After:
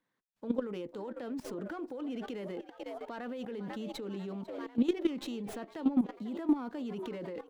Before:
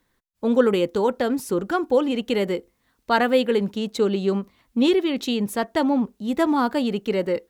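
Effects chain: high-pass 120 Hz 24 dB/octave; tone controls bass -2 dB, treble -7 dB; band-stop 380 Hz, Q 12; frequency-shifting echo 495 ms, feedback 63%, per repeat +79 Hz, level -19.5 dB; compression 8:1, threshold -25 dBFS, peak gain reduction 13.5 dB; peak limiter -23 dBFS, peak gain reduction 8 dB; level held to a coarse grid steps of 14 dB; dynamic bell 280 Hz, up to +6 dB, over -48 dBFS, Q 1.1; sliding maximum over 3 samples

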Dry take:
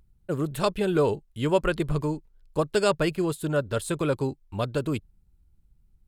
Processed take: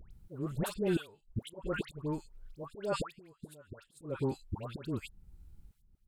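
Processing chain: in parallel at +1.5 dB: compression 6:1, threshold -35 dBFS, peak gain reduction 17.5 dB; on the sum: slow attack 551 ms; inverted gate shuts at -20 dBFS, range -33 dB; phase dispersion highs, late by 112 ms, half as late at 1.3 kHz

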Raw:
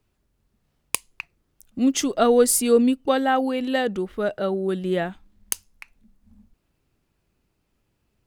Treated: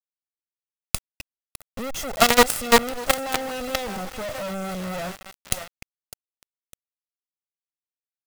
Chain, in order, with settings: comb filter that takes the minimum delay 1.5 ms; thinning echo 605 ms, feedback 21%, high-pass 530 Hz, level -14 dB; companded quantiser 2-bit; trim -4.5 dB

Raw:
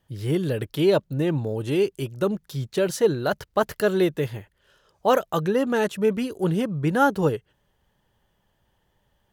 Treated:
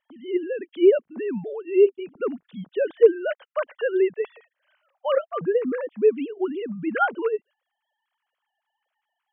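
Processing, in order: formants replaced by sine waves; 5.30–6.01 s: low-pass 1.8 kHz -> 1 kHz 12 dB/octave

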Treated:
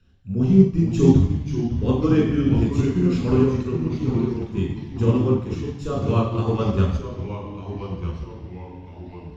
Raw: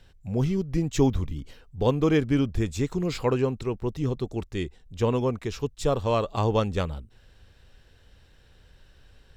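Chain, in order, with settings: treble shelf 3.3 kHz -8.5 dB; reverberation RT60 1.0 s, pre-delay 3 ms, DRR -1.5 dB; ever faster or slower copies 418 ms, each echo -2 st, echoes 3, each echo -6 dB; upward expansion 1.5:1, over -22 dBFS; trim -2 dB

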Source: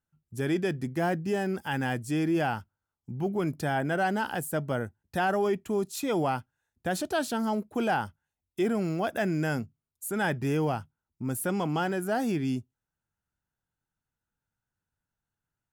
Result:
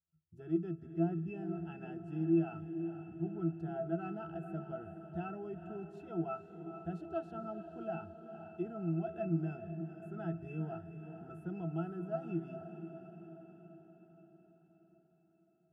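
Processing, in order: pitch-class resonator E, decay 0.19 s; on a send: echo that smears into a reverb 475 ms, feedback 58%, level -9 dB

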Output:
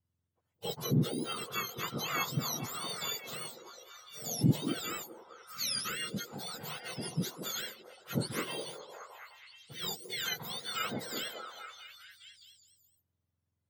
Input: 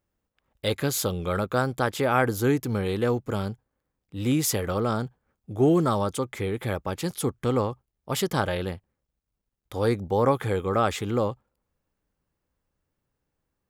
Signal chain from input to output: spectrum inverted on a logarithmic axis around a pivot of 1.3 kHz; repeats whose band climbs or falls 209 ms, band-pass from 380 Hz, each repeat 0.7 oct, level -0.5 dB; trim -8.5 dB

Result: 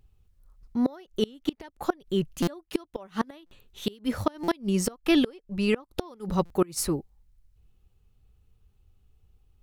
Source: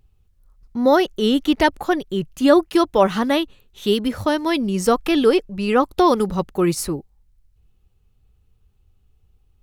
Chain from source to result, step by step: inverted gate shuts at -9 dBFS, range -28 dB; buffer glitch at 2.42/3.46/4.43/6.45 s, samples 256, times 8; trim -2.5 dB

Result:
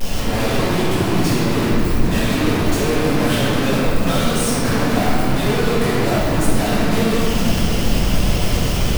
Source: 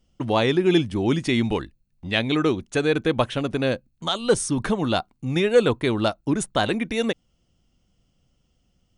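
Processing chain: one-bit comparator; reverberation RT60 3.2 s, pre-delay 4 ms, DRR -12 dB; trim -6.5 dB

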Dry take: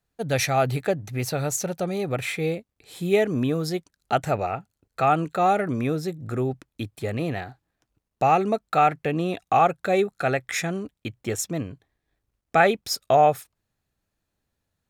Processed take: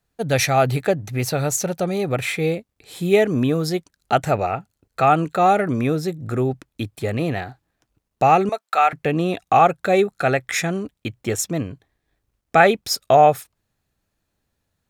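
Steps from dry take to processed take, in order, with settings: 8.49–8.93 s: high-pass 750 Hz 12 dB/octave; trim +4.5 dB

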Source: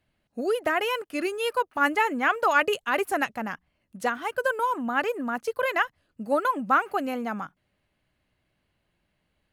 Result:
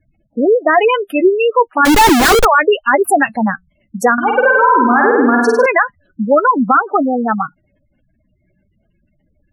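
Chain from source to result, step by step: spectral gate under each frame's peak -10 dB strong; treble shelf 9.1 kHz +8.5 dB; 1.85–2.45 s: Schmitt trigger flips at -34.5 dBFS; flange 0.41 Hz, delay 2.3 ms, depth 3.1 ms, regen +60%; 4.13–5.66 s: flutter echo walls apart 8.6 m, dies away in 1 s; loudness maximiser +21.5 dB; trim -1 dB

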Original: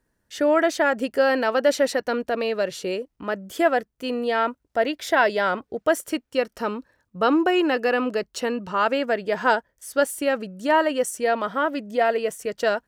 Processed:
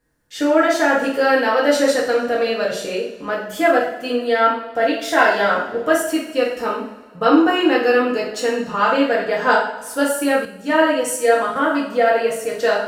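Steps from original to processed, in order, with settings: two-slope reverb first 0.53 s, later 1.9 s, from -17 dB, DRR -6 dB; 10.45–11.56 s: three bands expanded up and down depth 40%; trim -1.5 dB

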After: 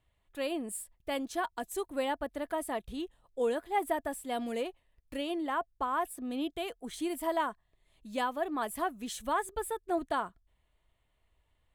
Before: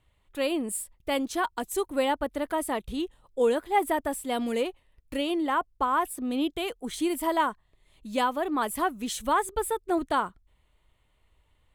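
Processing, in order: small resonant body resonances 680/1700 Hz, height 7 dB, ringing for 45 ms; trim -7 dB

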